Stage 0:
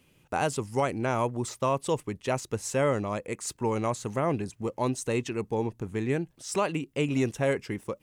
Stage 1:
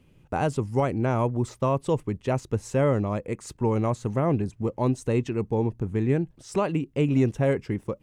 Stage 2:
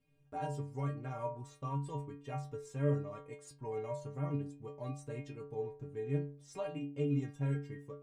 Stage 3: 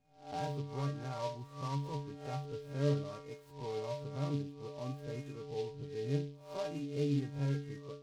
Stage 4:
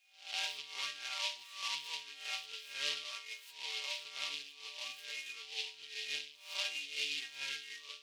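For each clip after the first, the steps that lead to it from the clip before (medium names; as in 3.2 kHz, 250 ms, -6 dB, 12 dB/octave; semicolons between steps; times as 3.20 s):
tilt EQ -2.5 dB/octave
inharmonic resonator 140 Hz, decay 0.5 s, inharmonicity 0.008; trim -1.5 dB
reverse spectral sustain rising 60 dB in 0.45 s; boxcar filter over 7 samples; delay time shaken by noise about 3.5 kHz, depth 0.039 ms
resonant high-pass 2.7 kHz, resonance Q 2.6; trim +10.5 dB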